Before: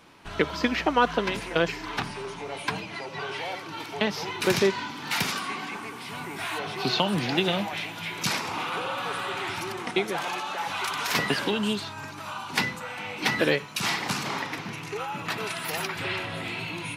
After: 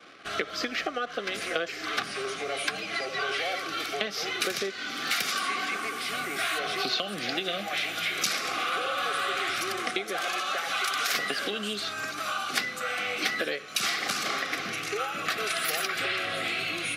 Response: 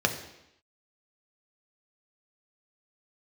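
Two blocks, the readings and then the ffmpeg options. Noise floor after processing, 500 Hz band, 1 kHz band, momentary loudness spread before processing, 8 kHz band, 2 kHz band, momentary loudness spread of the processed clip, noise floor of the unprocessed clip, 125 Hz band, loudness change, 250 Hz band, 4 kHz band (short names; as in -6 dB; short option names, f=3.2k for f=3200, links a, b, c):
-39 dBFS, -4.5 dB, -1.5 dB, 10 LU, +2.5 dB, +1.0 dB, 4 LU, -39 dBFS, -13.0 dB, -0.5 dB, -8.5 dB, +1.0 dB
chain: -filter_complex "[0:a]acompressor=threshold=-31dB:ratio=12,asuperstop=centerf=930:order=8:qfactor=3.5,asplit=2[a][b];[1:a]atrim=start_sample=2205,afade=t=out:st=0.32:d=0.01,atrim=end_sample=14553[c];[b][c]afir=irnorm=-1:irlink=0,volume=-25dB[d];[a][d]amix=inputs=2:normalize=0,anlmdn=0.000631,highpass=f=690:p=1,volume=7.5dB"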